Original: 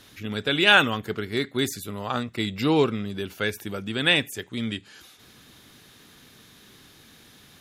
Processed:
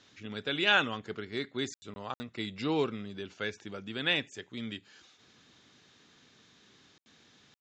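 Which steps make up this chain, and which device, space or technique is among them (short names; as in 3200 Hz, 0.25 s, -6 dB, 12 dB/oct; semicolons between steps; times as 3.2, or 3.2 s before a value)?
call with lost packets (HPF 130 Hz 6 dB/oct; downsampling 16000 Hz; packet loss packets of 20 ms bursts); gain -8.5 dB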